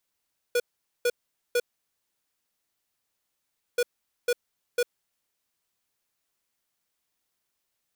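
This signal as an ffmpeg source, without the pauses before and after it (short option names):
-f lavfi -i "aevalsrc='0.0708*(2*lt(mod(485*t,1),0.5)-1)*clip(min(mod(mod(t,3.23),0.5),0.05-mod(mod(t,3.23),0.5))/0.005,0,1)*lt(mod(t,3.23),1.5)':d=6.46:s=44100"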